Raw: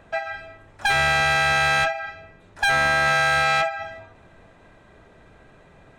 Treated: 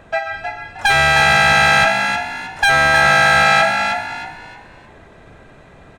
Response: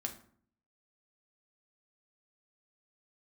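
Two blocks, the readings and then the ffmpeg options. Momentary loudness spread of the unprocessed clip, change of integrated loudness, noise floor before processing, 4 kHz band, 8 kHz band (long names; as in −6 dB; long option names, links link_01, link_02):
16 LU, +7.0 dB, −52 dBFS, +7.5 dB, +7.5 dB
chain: -filter_complex "[0:a]asplit=5[link_01][link_02][link_03][link_04][link_05];[link_02]adelay=312,afreqshift=54,volume=-6dB[link_06];[link_03]adelay=624,afreqshift=108,volume=-16.2dB[link_07];[link_04]adelay=936,afreqshift=162,volume=-26.3dB[link_08];[link_05]adelay=1248,afreqshift=216,volume=-36.5dB[link_09];[link_01][link_06][link_07][link_08][link_09]amix=inputs=5:normalize=0,volume=6.5dB"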